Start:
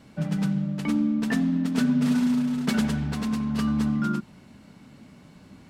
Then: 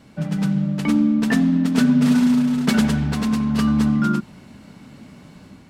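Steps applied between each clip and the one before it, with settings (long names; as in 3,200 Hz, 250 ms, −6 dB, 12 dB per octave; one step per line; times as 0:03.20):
automatic gain control gain up to 4 dB
level +2.5 dB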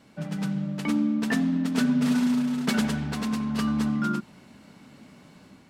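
low-shelf EQ 150 Hz −9.5 dB
level −4.5 dB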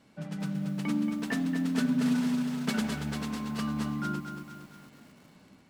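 feedback echo at a low word length 230 ms, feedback 55%, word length 8 bits, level −7 dB
level −5.5 dB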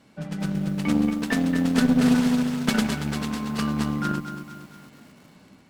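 harmonic generator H 4 −21 dB, 7 −27 dB, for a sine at −15.5 dBFS
level +8 dB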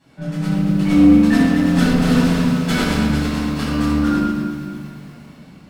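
convolution reverb RT60 1.4 s, pre-delay 7 ms, DRR −11 dB
level −7.5 dB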